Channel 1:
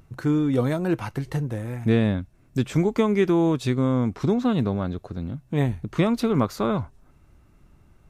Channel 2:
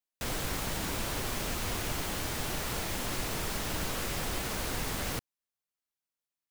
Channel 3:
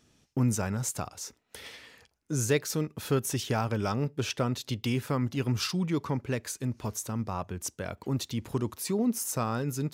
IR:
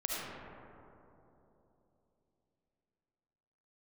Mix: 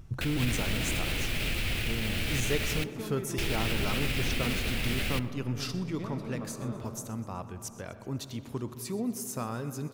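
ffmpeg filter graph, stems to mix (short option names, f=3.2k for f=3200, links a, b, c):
-filter_complex "[0:a]volume=-3dB,asplit=2[a][b];[b]volume=-23.5dB[c];[1:a]equalizer=f=1k:t=o:w=0.67:g=-9,equalizer=f=2.5k:t=o:w=0.67:g=8,equalizer=f=6.3k:t=o:w=0.67:g=-6,equalizer=f=3.1k:w=0.65:g=6.5,volume=0dB,asplit=3[d][e][f];[d]atrim=end=2.84,asetpts=PTS-STARTPTS,afade=t=out:st=2.836:d=0.004:c=hsin[g];[e]atrim=start=2.84:end=3.38,asetpts=PTS-STARTPTS,volume=0[h];[f]atrim=start=3.38,asetpts=PTS-STARTPTS,afade=t=in:d=0.004:c=hsin[i];[g][h][i]concat=n=3:v=0:a=1,asplit=2[j][k];[k]volume=-22dB[l];[2:a]volume=-6.5dB,asplit=4[m][n][o][p];[n]volume=-14.5dB[q];[o]volume=-17dB[r];[p]apad=whole_len=356843[s];[a][s]sidechaincompress=threshold=-57dB:ratio=8:attack=16:release=1360[t];[t][j]amix=inputs=2:normalize=0,lowshelf=f=150:g=11,alimiter=limit=-22dB:level=0:latency=1:release=99,volume=0dB[u];[3:a]atrim=start_sample=2205[v];[c][l][q]amix=inputs=3:normalize=0[w];[w][v]afir=irnorm=-1:irlink=0[x];[r]aecho=0:1:125|250|375|500|625|750|875|1000|1125|1250:1|0.6|0.36|0.216|0.13|0.0778|0.0467|0.028|0.0168|0.0101[y];[m][u][x][y]amix=inputs=4:normalize=0"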